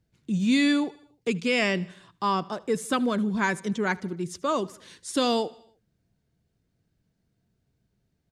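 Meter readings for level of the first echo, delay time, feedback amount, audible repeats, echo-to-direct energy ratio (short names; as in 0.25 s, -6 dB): -23.0 dB, 77 ms, 58%, 3, -21.5 dB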